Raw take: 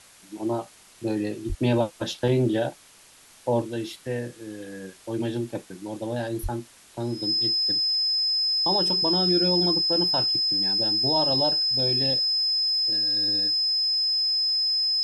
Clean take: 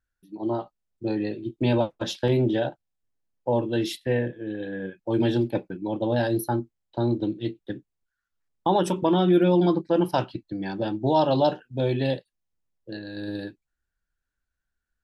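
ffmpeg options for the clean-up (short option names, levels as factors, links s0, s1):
-filter_complex "[0:a]bandreject=f=5100:w=30,asplit=3[s0][s1][s2];[s0]afade=t=out:st=1.48:d=0.02[s3];[s1]highpass=f=140:w=0.5412,highpass=f=140:w=1.3066,afade=t=in:st=1.48:d=0.02,afade=t=out:st=1.6:d=0.02[s4];[s2]afade=t=in:st=1.6:d=0.02[s5];[s3][s4][s5]amix=inputs=3:normalize=0,asplit=3[s6][s7][s8];[s6]afade=t=out:st=6.42:d=0.02[s9];[s7]highpass=f=140:w=0.5412,highpass=f=140:w=1.3066,afade=t=in:st=6.42:d=0.02,afade=t=out:st=6.54:d=0.02[s10];[s8]afade=t=in:st=6.54:d=0.02[s11];[s9][s10][s11]amix=inputs=3:normalize=0,afwtdn=0.0032,asetnsamples=n=441:p=0,asendcmd='3.62 volume volume 5.5dB',volume=1"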